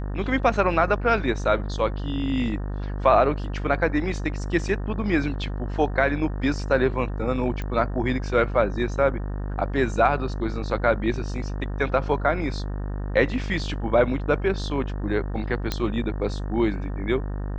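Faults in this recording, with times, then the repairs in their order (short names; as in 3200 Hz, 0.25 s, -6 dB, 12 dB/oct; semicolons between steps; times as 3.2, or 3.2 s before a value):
buzz 50 Hz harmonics 37 -29 dBFS
7.62 pop -19 dBFS
15.72 pop -10 dBFS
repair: de-click; de-hum 50 Hz, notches 37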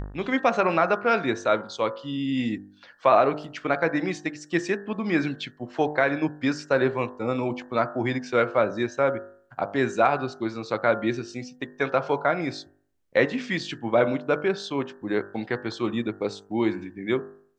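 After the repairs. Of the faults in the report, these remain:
none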